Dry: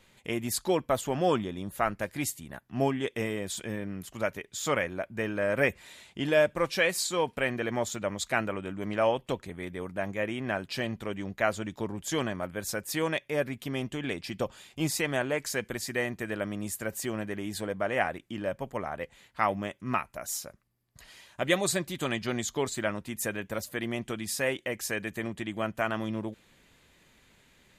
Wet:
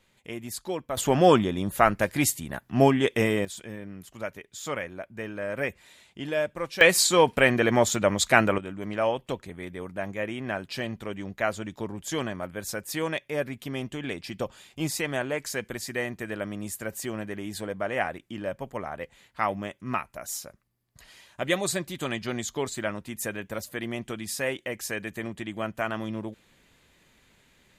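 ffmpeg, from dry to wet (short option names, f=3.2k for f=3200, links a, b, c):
-af "asetnsamples=n=441:p=0,asendcmd='0.97 volume volume 8dB;3.45 volume volume -4dB;6.81 volume volume 9dB;8.58 volume volume 0dB',volume=-5dB"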